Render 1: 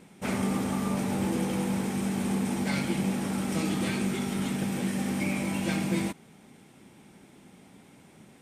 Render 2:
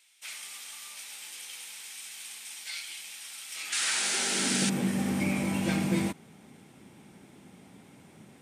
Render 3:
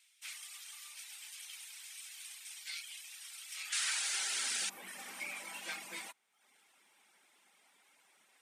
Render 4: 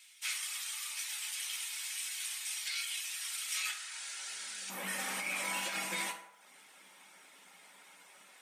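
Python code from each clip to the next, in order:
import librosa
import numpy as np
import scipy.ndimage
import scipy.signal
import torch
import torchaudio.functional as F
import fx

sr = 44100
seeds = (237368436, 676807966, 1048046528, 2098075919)

y1 = fx.spec_paint(x, sr, seeds[0], shape='noise', start_s=3.72, length_s=0.98, low_hz=1300.0, high_hz=10000.0, level_db=-30.0)
y1 = fx.filter_sweep_highpass(y1, sr, from_hz=3200.0, to_hz=74.0, start_s=3.49, end_s=5.03, q=1.1)
y2 = fx.dereverb_blind(y1, sr, rt60_s=0.75)
y2 = scipy.signal.sosfilt(scipy.signal.butter(2, 1100.0, 'highpass', fs=sr, output='sos'), y2)
y2 = y2 * librosa.db_to_amplitude(-4.5)
y3 = fx.over_compress(y2, sr, threshold_db=-45.0, ratio=-1.0)
y3 = fx.rev_fdn(y3, sr, rt60_s=0.81, lf_ratio=0.7, hf_ratio=0.55, size_ms=32.0, drr_db=1.5)
y3 = y3 * librosa.db_to_amplitude(5.0)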